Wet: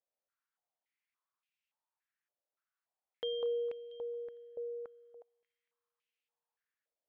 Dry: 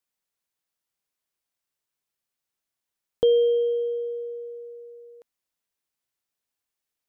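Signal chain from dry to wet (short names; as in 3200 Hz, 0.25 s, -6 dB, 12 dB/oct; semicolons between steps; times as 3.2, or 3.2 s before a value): thin delay 0.228 s, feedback 60%, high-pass 1700 Hz, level -15 dB; stepped band-pass 3.5 Hz 590–2600 Hz; gain +5.5 dB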